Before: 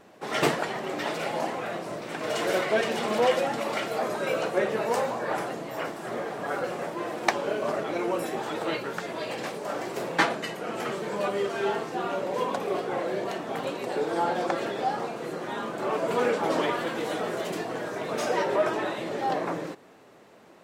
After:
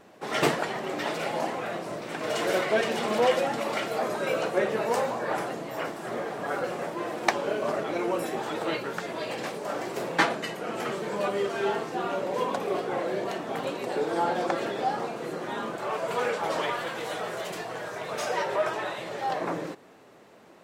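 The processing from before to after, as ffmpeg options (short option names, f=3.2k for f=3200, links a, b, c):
-filter_complex "[0:a]asettb=1/sr,asplit=3[a][b][c];[a]atrim=end=15.764[d];[b]atrim=start=15.76:end=19.41,asetpts=PTS-STARTPTS,afade=t=in:d=0.004:c=qsin,afade=t=out:st=3.646:d=0.004:c=qsin,equalizer=f=270:w=1.1:g=-10.5[e];[c]atrim=start=19.406[f];[d][e]acrossfade=d=0.004:c1=hsin:c2=qsin[g];[g][f]acrossfade=d=0.004:c1=qsin:c2=hsin"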